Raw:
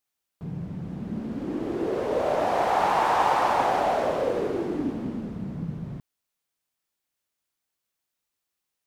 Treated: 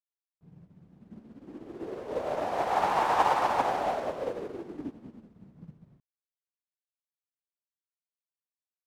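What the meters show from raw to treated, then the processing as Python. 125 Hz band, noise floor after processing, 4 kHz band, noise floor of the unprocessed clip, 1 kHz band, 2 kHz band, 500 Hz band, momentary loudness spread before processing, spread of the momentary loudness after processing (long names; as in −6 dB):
−13.5 dB, below −85 dBFS, −4.5 dB, −84 dBFS, −4.0 dB, −4.5 dB, −6.5 dB, 14 LU, 19 LU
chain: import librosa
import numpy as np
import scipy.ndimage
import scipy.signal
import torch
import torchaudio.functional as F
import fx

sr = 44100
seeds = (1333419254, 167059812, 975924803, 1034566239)

y = fx.upward_expand(x, sr, threshold_db=-39.0, expansion=2.5)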